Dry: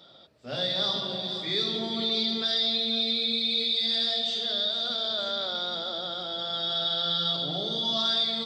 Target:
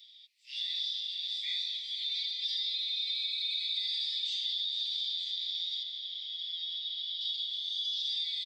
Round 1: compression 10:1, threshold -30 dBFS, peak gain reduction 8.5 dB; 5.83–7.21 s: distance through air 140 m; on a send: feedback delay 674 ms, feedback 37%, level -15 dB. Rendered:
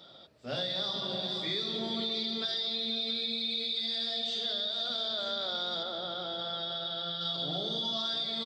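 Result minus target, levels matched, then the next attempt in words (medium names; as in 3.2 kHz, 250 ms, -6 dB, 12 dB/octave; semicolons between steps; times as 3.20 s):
2 kHz band +4.0 dB
compression 10:1, threshold -30 dBFS, peak gain reduction 8.5 dB; steep high-pass 2 kHz 96 dB/octave; 5.83–7.21 s: distance through air 140 m; on a send: feedback delay 674 ms, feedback 37%, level -15 dB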